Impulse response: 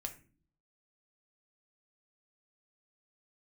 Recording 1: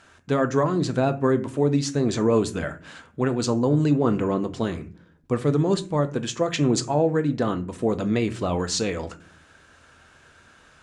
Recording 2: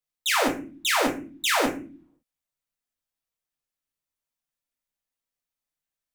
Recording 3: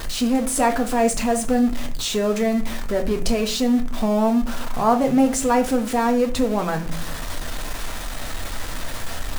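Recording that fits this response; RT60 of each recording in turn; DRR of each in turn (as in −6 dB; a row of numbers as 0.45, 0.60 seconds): 3; non-exponential decay, 0.40 s, 0.40 s; 8.5, −1.0, 4.5 decibels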